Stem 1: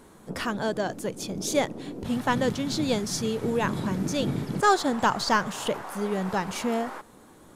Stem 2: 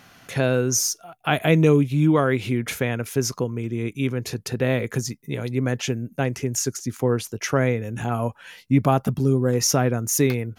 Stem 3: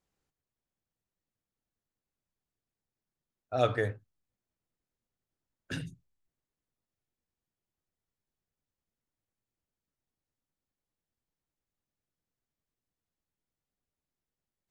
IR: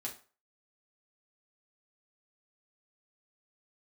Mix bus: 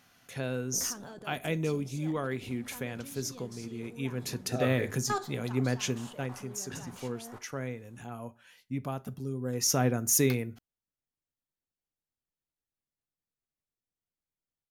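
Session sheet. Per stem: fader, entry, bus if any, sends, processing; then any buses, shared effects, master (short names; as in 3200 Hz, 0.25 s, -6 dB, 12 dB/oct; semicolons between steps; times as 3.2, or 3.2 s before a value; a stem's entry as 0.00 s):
-2.5 dB, 0.45 s, send -14.5 dB, level quantiser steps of 19 dB; auto duck -11 dB, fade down 1.90 s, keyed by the second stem
3.87 s -15.5 dB -> 4.36 s -8.5 dB -> 5.83 s -8.5 dB -> 6.53 s -18.5 dB -> 9.34 s -18.5 dB -> 9.85 s -8 dB, 0.00 s, send -10 dB, high shelf 4000 Hz +6 dB
-6.5 dB, 1.00 s, no send, dry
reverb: on, RT60 0.40 s, pre-delay 4 ms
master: dry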